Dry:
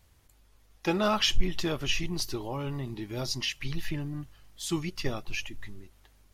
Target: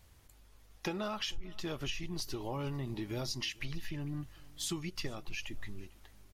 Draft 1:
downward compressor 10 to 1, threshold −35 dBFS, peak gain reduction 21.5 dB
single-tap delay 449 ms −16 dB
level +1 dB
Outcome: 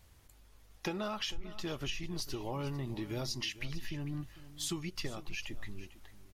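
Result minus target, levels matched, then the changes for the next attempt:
echo-to-direct +7.5 dB
change: single-tap delay 449 ms −23.5 dB

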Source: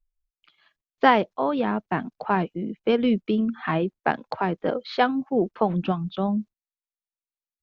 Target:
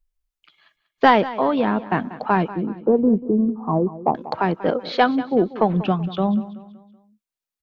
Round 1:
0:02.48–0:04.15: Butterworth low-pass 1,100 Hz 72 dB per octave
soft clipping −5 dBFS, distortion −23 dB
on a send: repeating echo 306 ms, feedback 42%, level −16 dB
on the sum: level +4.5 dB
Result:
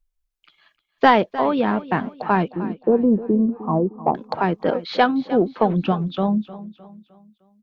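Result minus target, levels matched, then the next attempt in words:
echo 117 ms late
0:02.48–0:04.15: Butterworth low-pass 1,100 Hz 72 dB per octave
soft clipping −5 dBFS, distortion −23 dB
on a send: repeating echo 189 ms, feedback 42%, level −16 dB
on the sum: level +4.5 dB

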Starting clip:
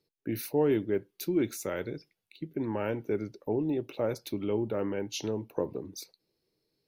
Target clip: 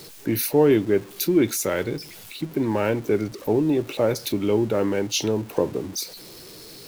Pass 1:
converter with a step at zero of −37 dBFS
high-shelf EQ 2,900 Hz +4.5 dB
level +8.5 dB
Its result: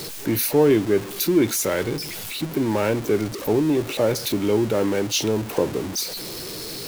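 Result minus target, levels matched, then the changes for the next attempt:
converter with a step at zero: distortion +9 dB
change: converter with a step at zero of −47 dBFS

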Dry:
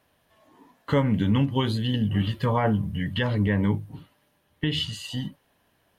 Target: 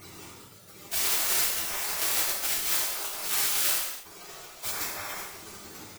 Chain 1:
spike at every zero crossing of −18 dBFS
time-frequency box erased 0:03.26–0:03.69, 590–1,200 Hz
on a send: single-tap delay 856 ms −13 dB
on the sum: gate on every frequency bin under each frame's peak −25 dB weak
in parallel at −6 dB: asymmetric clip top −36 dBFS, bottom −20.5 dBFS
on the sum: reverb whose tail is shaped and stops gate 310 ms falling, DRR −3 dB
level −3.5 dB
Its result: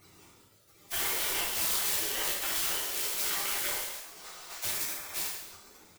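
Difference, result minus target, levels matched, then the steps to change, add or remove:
spike at every zero crossing: distortion −11 dB
change: spike at every zero crossing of −6.5 dBFS

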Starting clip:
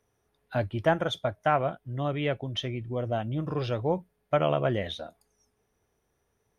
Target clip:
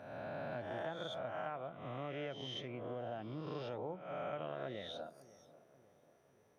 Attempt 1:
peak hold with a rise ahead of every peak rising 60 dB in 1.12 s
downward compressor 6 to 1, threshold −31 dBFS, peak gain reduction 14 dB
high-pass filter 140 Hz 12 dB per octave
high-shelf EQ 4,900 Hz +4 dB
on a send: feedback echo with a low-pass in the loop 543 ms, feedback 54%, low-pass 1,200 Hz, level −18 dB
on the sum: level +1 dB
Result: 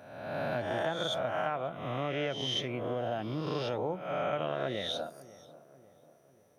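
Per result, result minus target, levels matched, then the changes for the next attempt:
downward compressor: peak gain reduction −9 dB; 8,000 Hz band +6.0 dB
change: downward compressor 6 to 1, threshold −42 dBFS, peak gain reduction 23 dB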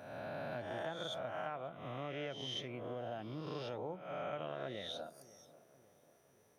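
8,000 Hz band +6.5 dB
change: high-shelf EQ 4,900 Hz −7.5 dB

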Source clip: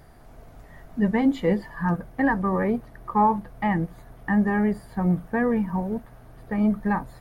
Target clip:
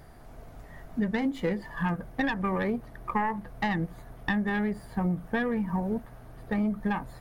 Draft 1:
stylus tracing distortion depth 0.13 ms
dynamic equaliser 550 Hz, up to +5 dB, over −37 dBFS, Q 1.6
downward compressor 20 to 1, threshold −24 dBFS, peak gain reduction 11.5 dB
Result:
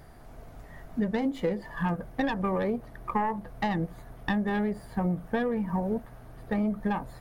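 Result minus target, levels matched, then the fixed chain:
2,000 Hz band −3.5 dB
stylus tracing distortion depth 0.13 ms
dynamic equaliser 1,900 Hz, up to +5 dB, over −37 dBFS, Q 1.6
downward compressor 20 to 1, threshold −24 dBFS, peak gain reduction 11 dB

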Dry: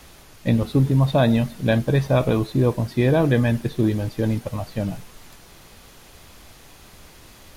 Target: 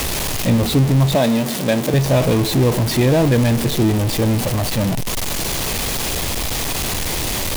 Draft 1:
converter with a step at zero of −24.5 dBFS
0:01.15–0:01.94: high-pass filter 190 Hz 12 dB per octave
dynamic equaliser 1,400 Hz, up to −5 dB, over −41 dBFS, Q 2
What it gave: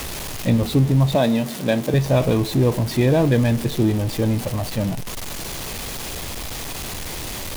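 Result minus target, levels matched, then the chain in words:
converter with a step at zero: distortion −7 dB
converter with a step at zero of −15.5 dBFS
0:01.15–0:01.94: high-pass filter 190 Hz 12 dB per octave
dynamic equaliser 1,400 Hz, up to −5 dB, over −41 dBFS, Q 2

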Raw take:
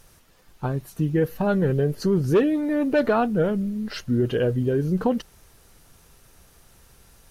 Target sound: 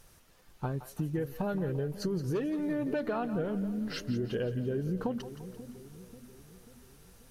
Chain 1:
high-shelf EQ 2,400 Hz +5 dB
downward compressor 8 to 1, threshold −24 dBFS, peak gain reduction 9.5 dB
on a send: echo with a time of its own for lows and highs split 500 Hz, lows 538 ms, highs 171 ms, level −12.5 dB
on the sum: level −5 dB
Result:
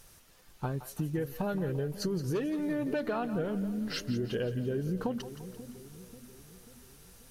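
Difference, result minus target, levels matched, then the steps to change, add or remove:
4,000 Hz band +3.5 dB
remove: high-shelf EQ 2,400 Hz +5 dB

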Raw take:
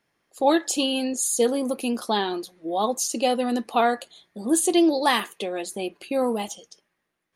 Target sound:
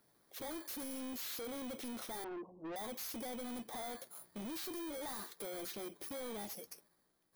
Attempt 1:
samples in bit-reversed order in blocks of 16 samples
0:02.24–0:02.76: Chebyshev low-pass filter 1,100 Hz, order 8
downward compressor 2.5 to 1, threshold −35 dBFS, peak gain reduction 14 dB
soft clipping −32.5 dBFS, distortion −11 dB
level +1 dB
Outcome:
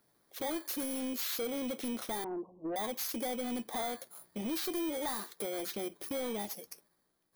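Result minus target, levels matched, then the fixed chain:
soft clipping: distortion −6 dB
samples in bit-reversed order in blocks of 16 samples
0:02.24–0:02.76: Chebyshev low-pass filter 1,100 Hz, order 8
downward compressor 2.5 to 1, threshold −35 dBFS, peak gain reduction 14 dB
soft clipping −43 dBFS, distortion −5 dB
level +1 dB

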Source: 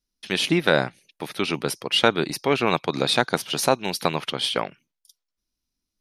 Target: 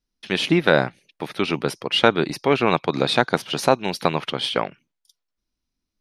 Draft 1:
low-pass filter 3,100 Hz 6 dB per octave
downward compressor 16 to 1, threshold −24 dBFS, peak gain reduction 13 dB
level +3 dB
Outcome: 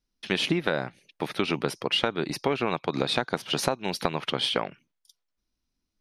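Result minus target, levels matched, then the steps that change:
downward compressor: peak gain reduction +13 dB
remove: downward compressor 16 to 1, threshold −24 dBFS, peak gain reduction 13 dB

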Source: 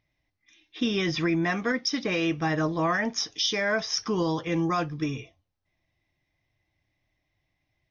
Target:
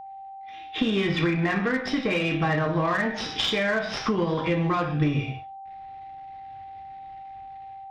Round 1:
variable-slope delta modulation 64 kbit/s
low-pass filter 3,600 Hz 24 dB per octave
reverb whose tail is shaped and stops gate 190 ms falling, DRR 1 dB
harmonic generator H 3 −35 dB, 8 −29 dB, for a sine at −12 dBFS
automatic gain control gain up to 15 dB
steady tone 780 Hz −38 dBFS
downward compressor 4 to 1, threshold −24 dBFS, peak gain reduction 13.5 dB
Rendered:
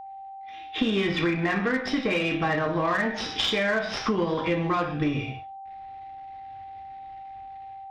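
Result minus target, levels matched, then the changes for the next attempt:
125 Hz band −4.0 dB
add after downward compressor: parametric band 150 Hz +7 dB 0.34 octaves

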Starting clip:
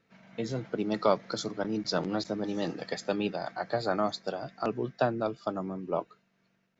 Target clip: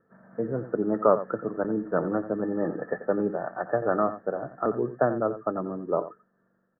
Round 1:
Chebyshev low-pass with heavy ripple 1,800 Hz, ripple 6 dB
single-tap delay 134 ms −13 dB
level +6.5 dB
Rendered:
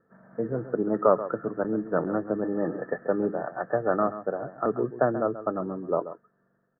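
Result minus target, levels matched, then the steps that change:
echo 46 ms late
change: single-tap delay 88 ms −13 dB

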